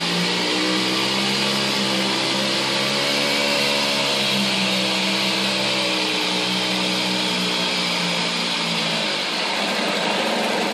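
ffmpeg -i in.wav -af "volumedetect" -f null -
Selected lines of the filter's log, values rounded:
mean_volume: -21.1 dB
max_volume: -8.9 dB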